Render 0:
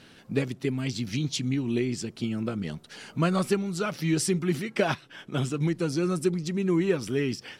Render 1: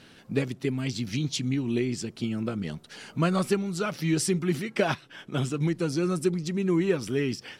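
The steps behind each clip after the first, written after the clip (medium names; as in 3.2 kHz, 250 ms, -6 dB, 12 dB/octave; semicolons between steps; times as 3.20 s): no audible change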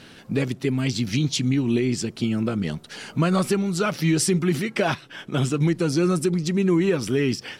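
peak limiter -18.5 dBFS, peak gain reduction 5.5 dB; trim +6.5 dB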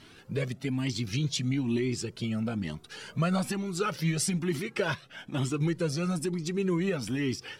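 Shepard-style flanger rising 1.1 Hz; trim -2 dB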